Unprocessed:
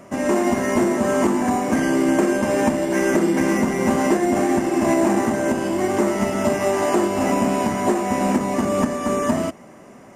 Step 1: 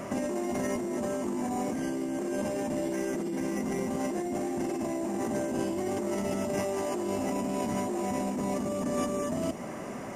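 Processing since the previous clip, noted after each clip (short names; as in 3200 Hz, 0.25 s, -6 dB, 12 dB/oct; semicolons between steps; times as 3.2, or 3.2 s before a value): dynamic EQ 1500 Hz, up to -7 dB, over -38 dBFS, Q 0.85; limiter -17.5 dBFS, peak gain reduction 9 dB; negative-ratio compressor -31 dBFS, ratio -1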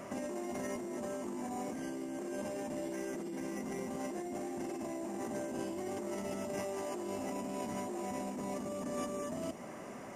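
low shelf 230 Hz -4.5 dB; gain -7 dB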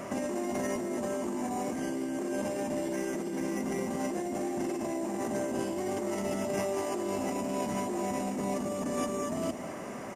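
echo 0.213 s -13 dB; gain +6.5 dB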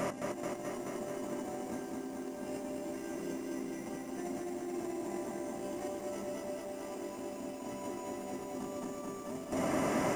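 reverb RT60 0.35 s, pre-delay 7 ms, DRR 12.5 dB; negative-ratio compressor -38 dBFS, ratio -0.5; lo-fi delay 0.216 s, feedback 80%, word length 10-bit, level -3 dB; gain -2 dB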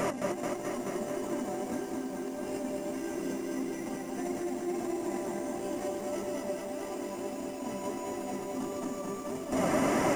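flange 1.6 Hz, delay 2 ms, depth 3.8 ms, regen +62%; gain +9 dB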